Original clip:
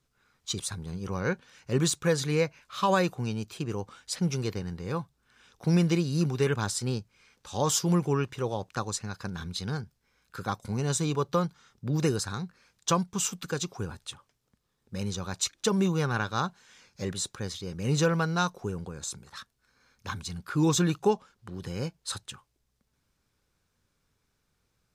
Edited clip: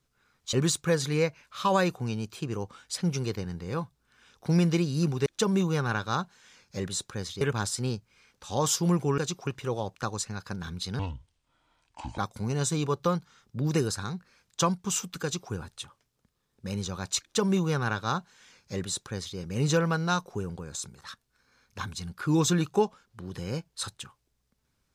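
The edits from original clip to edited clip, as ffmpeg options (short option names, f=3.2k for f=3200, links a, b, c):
-filter_complex "[0:a]asplit=8[a][b][c][d][e][f][g][h];[a]atrim=end=0.532[i];[b]atrim=start=1.708:end=6.442[j];[c]atrim=start=15.508:end=17.662[k];[d]atrim=start=6.438:end=8.212[l];[e]atrim=start=13.508:end=13.802[m];[f]atrim=start=8.208:end=9.734[n];[g]atrim=start=9.73:end=10.47,asetpts=PTS-STARTPTS,asetrate=27342,aresample=44100,atrim=end_sample=52635,asetpts=PTS-STARTPTS[o];[h]atrim=start=10.466[p];[i][j]acrossfade=d=0.004:c1=hsin:c2=hsin[q];[q][k]acrossfade=d=0.004:c1=hsin:c2=hsin[r];[r][l]acrossfade=d=0.004:c1=hsin:c2=hsin[s];[s][m]acrossfade=d=0.004:c1=hsin:c2=hsin[t];[t][n]acrossfade=d=0.004:c1=hsin:c2=hsin[u];[u][o]acrossfade=d=0.004:c1=hsin:c2=hsin[v];[v][p]acrossfade=d=0.004:c1=hsin:c2=hsin"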